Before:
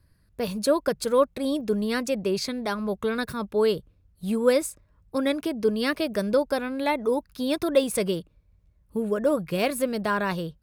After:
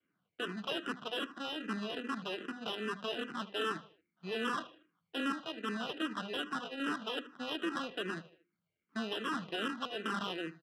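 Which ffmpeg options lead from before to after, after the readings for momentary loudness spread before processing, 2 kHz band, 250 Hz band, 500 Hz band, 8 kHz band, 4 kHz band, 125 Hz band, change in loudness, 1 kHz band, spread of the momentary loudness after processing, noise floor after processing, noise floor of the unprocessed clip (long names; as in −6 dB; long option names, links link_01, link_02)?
7 LU, −6.0 dB, −12.5 dB, −18.0 dB, −19.0 dB, −3.5 dB, −14.5 dB, −12.0 dB, −8.0 dB, 5 LU, below −85 dBFS, −63 dBFS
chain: -filter_complex "[0:a]bandreject=frequency=50:width_type=h:width=6,bandreject=frequency=100:width_type=h:width=6,bandreject=frequency=150:width_type=h:width=6,bandreject=frequency=200:width_type=h:width=6,bandreject=frequency=250:width_type=h:width=6,bandreject=frequency=300:width_type=h:width=6,bandreject=frequency=350:width_type=h:width=6,aecho=1:1:1.3:0.31,adynamicequalizer=threshold=0.0224:dfrequency=460:dqfactor=0.83:tfrequency=460:tqfactor=0.83:attack=5:release=100:ratio=0.375:range=1.5:mode=cutabove:tftype=bell,acrossover=split=390|1100|3600[link_01][link_02][link_03][link_04];[link_03]alimiter=level_in=3.5dB:limit=-24dB:level=0:latency=1,volume=-3.5dB[link_05];[link_04]acompressor=threshold=-53dB:ratio=4[link_06];[link_01][link_02][link_05][link_06]amix=inputs=4:normalize=0,acrusher=samples=20:mix=1:aa=0.000001,aeval=exprs='0.299*(cos(1*acos(clip(val(0)/0.299,-1,1)))-cos(1*PI/2))+0.133*(cos(2*acos(clip(val(0)/0.299,-1,1)))-cos(2*PI/2))+0.133*(cos(4*acos(clip(val(0)/0.299,-1,1)))-cos(4*PI/2))+0.075*(cos(8*acos(clip(val(0)/0.299,-1,1)))-cos(8*PI/2))':channel_layout=same,asoftclip=type=tanh:threshold=-16.5dB,highpass=frequency=200:width=0.5412,highpass=frequency=200:width=1.3066,equalizer=frequency=580:width_type=q:width=4:gain=-7,equalizer=frequency=860:width_type=q:width=4:gain=-9,equalizer=frequency=1400:width_type=q:width=4:gain=6,equalizer=frequency=3000:width_type=q:width=4:gain=9,equalizer=frequency=5000:width_type=q:width=4:gain=-4,lowpass=frequency=5600:width=0.5412,lowpass=frequency=5600:width=1.3066,aecho=1:1:77|154|231:0.178|0.0676|0.0257,adynamicsmooth=sensitivity=4:basefreq=3900,asplit=2[link_07][link_08];[link_08]afreqshift=-2.5[link_09];[link_07][link_09]amix=inputs=2:normalize=1,volume=-5.5dB"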